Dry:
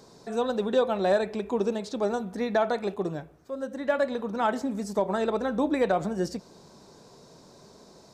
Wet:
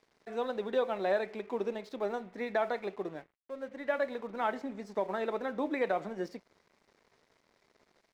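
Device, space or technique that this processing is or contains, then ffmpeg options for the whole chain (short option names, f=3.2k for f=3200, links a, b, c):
pocket radio on a weak battery: -af "highpass=260,lowpass=3.9k,aeval=exprs='sgn(val(0))*max(abs(val(0))-0.00224,0)':c=same,equalizer=f=2.1k:t=o:w=0.41:g=7.5,volume=-6dB"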